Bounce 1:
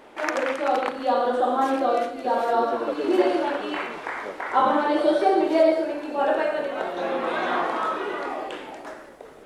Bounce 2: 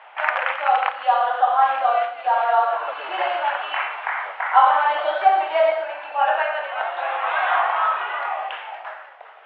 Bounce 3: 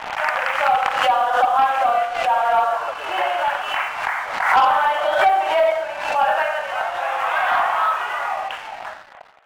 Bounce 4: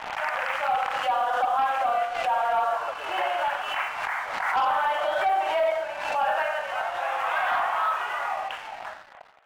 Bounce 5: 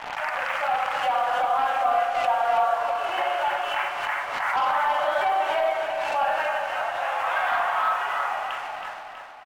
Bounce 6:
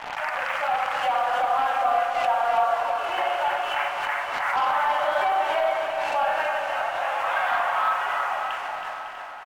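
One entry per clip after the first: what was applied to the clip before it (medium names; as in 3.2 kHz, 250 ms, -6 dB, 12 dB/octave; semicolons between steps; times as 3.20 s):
elliptic band-pass 730–3000 Hz, stop band 70 dB; trim +7 dB
waveshaping leveller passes 2; swell ahead of each attack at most 56 dB/s; trim -6 dB
peak limiter -12.5 dBFS, peak gain reduction 7.5 dB; trim -5 dB
feedback delay 323 ms, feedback 51%, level -7 dB; on a send at -11 dB: reverberation RT60 1.8 s, pre-delay 7 ms
feedback delay 553 ms, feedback 57%, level -12 dB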